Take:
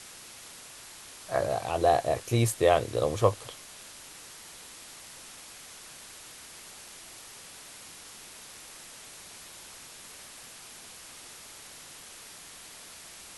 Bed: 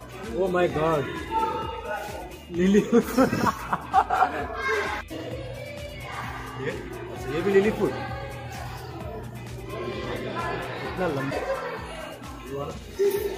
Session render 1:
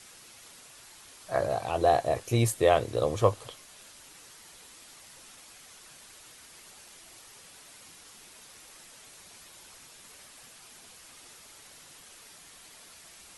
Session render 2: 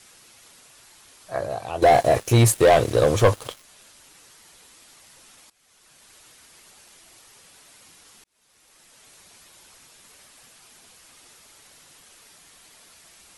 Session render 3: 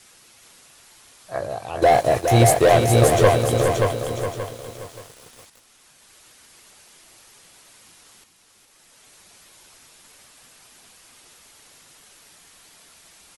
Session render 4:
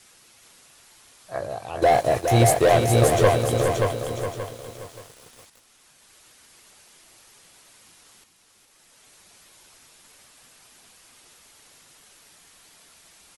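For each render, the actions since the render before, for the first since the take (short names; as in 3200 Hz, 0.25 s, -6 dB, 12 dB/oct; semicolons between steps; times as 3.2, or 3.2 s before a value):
denoiser 6 dB, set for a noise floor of -48 dBFS
1.82–3.64 sample leveller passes 3; 5.5–6.16 fade in, from -19 dB; 8.24–9.11 fade in
feedback echo 0.414 s, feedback 23%, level -6.5 dB; lo-fi delay 0.578 s, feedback 35%, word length 7-bit, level -4 dB
gain -2.5 dB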